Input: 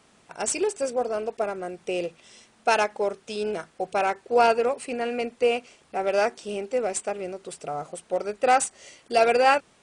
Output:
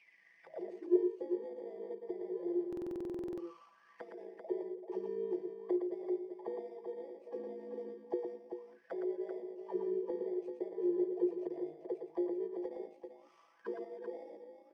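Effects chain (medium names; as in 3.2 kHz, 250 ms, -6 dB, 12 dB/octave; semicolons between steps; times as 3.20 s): bit-reversed sample order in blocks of 32 samples; treble shelf 7.5 kHz +11.5 dB; compression 6:1, threshold -31 dBFS, peak gain reduction 23.5 dB; auto-wah 370–2600 Hz, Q 18, down, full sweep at -31.5 dBFS; distance through air 130 m; loudspeakers at several distances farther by 26 m -6 dB, 89 m -7 dB; granular stretch 1.5×, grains 36 ms; buffer glitch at 2.68 s, samples 2048, times 14; trim +18 dB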